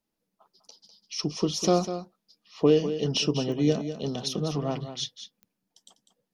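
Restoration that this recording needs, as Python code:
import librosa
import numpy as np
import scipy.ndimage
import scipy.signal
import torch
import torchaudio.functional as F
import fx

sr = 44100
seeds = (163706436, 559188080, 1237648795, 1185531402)

y = fx.fix_declick_ar(x, sr, threshold=10.0)
y = fx.fix_echo_inverse(y, sr, delay_ms=199, level_db=-10.5)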